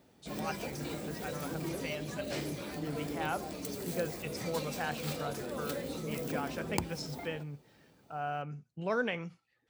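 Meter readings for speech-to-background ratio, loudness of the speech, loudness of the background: −0.5 dB, −40.0 LKFS, −39.5 LKFS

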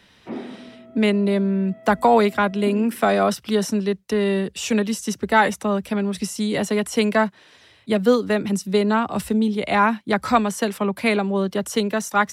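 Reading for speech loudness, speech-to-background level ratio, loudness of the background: −21.0 LKFS, 18.0 dB, −39.0 LKFS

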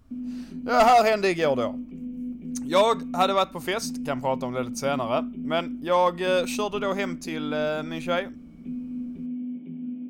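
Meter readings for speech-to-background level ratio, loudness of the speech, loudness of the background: 10.5 dB, −25.0 LKFS, −35.5 LKFS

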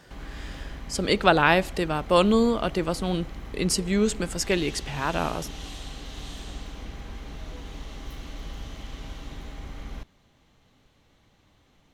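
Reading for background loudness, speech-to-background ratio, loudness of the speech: −40.5 LKFS, 16.5 dB, −24.0 LKFS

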